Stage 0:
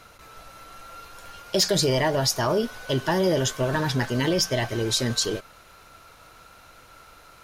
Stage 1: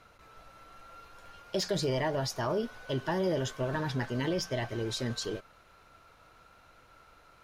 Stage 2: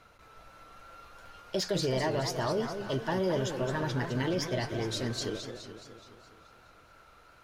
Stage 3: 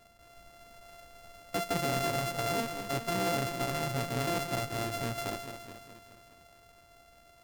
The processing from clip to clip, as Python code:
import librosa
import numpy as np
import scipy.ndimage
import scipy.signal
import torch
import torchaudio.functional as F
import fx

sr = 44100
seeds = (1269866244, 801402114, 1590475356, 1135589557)

y1 = fx.high_shelf(x, sr, hz=4900.0, db=-10.5)
y1 = F.gain(torch.from_numpy(y1), -7.5).numpy()
y2 = fx.echo_warbled(y1, sr, ms=211, feedback_pct=57, rate_hz=2.8, cents=215, wet_db=-8)
y3 = np.r_[np.sort(y2[:len(y2) // 64 * 64].reshape(-1, 64), axis=1).ravel(), y2[len(y2) // 64 * 64:]]
y3 = F.gain(torch.from_numpy(y3), -1.5).numpy()